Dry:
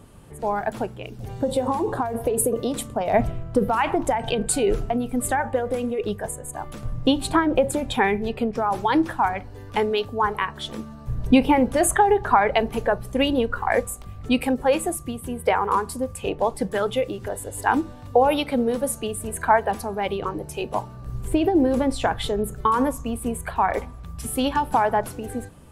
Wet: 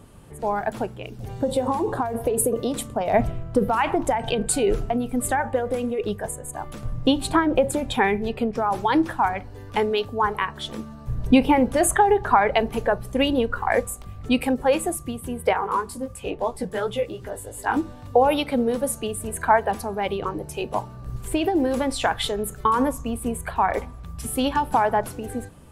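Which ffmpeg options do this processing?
-filter_complex "[0:a]asettb=1/sr,asplit=3[s0][s1][s2];[s0]atrim=end=15.534[s3];[s1]atrim=start=15.53:end=17.77,asetpts=PTS-STARTPTS,afade=t=in:d=0.004:c=qsin,afade=t=out:st=2.236:d=0.004:c=qsin,flanger=delay=15.5:depth=3:speed=2.9[s4];[s2]atrim=start=17.766[s5];[s3][s4]acrossfade=d=0.004:c1=hsin:c2=qsin[s6];[s6][s5]acrossfade=d=0.004:c1=qsin:c2=hsin,asettb=1/sr,asplit=3[s7][s8][s9];[s7]atrim=end=21.164[s10];[s8]atrim=start=21.16:end=22.64,asetpts=PTS-STARTPTS,afade=t=in:d=0.004:c=qsin,afade=t=out:st=1.476:d=0.004:c=qsin,tiltshelf=f=750:g=-4.5[s11];[s9]atrim=start=22.636[s12];[s10][s11]acrossfade=d=0.004:c1=hsin:c2=qsin[s13];[s13][s12]acrossfade=d=0.004:c1=qsin:c2=hsin"

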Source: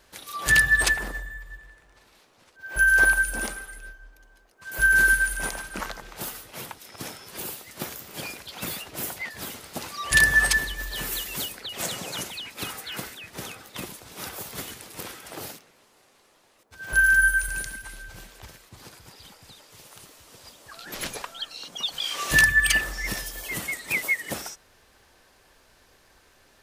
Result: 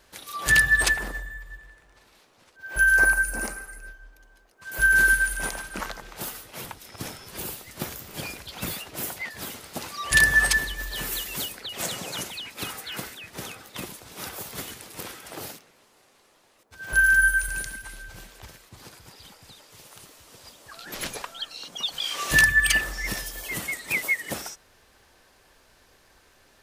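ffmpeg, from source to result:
-filter_complex "[0:a]asettb=1/sr,asplit=3[s0][s1][s2];[s0]atrim=end=2.964[s3];[s1]atrim=start=2.96:end=3.88,asetpts=PTS-STARTPTS,afade=t=in:d=0.004:c=qsin,afade=t=out:st=0.916:d=0.004:c=qsin,equalizer=f=3400:t=o:w=0.41:g=-14.5[s4];[s2]atrim=start=3.876[s5];[s3][s4]acrossfade=d=0.004:c1=hsin:c2=qsin[s6];[s6][s5]acrossfade=d=0.004:c1=qsin:c2=hsin,asettb=1/sr,asplit=3[s7][s8][s9];[s7]atrim=end=6.644[s10];[s8]atrim=start=6.64:end=8.72,asetpts=PTS-STARTPTS,afade=t=in:d=0.004:c=qsin,afade=t=out:st=2.076:d=0.004:c=qsin,lowshelf=f=100:g=12[s11];[s9]atrim=start=8.716[s12];[s10][s11]acrossfade=d=0.004:c1=hsin:c2=qsin[s13];[s13][s12]acrossfade=d=0.004:c1=qsin:c2=hsin"

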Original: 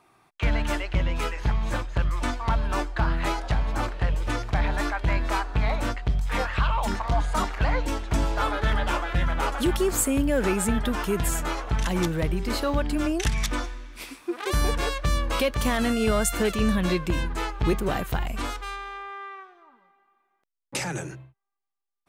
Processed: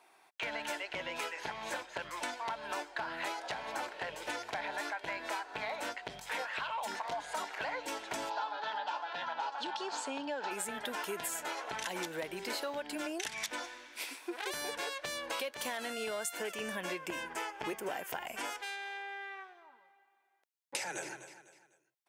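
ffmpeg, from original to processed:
-filter_complex "[0:a]asplit=3[s0][s1][s2];[s0]afade=t=out:st=8.29:d=0.02[s3];[s1]highpass=f=180:w=0.5412,highpass=f=180:w=1.3066,equalizer=f=220:t=q:w=4:g=-6,equalizer=f=360:t=q:w=4:g=-8,equalizer=f=530:t=q:w=4:g=-5,equalizer=f=890:t=q:w=4:g=9,equalizer=f=2100:t=q:w=4:g=-10,equalizer=f=4300:t=q:w=4:g=4,lowpass=f=5400:w=0.5412,lowpass=f=5400:w=1.3066,afade=t=in:st=8.29:d=0.02,afade=t=out:st=10.5:d=0.02[s4];[s2]afade=t=in:st=10.5:d=0.02[s5];[s3][s4][s5]amix=inputs=3:normalize=0,asettb=1/sr,asplit=3[s6][s7][s8];[s6]atrim=end=16.394[s9];[s7]atrim=start=16.39:end=18.6,asetpts=PTS-STARTPTS,afade=t=in:d=0.004:c=qsin,afade=t=out:st=2.206:d=0.004:c=qsin,equalizer=f=4000:w=6.9:g=-15[s10];[s8]atrim=start=18.596[s11];[s9][s10]acrossfade=d=0.004:c1=hsin:c2=qsin[s12];[s12][s11]acrossfade=d=0.004:c1=qsin:c2=hsin,asplit=2[s13][s14];[s14]afade=t=in:st=20.77:d=0.01,afade=t=out:st=21.19:d=0.01,aecho=0:1:250|500|750:0.177828|0.0622398|0.0217839[s15];[s13][s15]amix=inputs=2:normalize=0,highpass=530,bandreject=f=1200:w=5.5,acompressor=threshold=0.0178:ratio=6"

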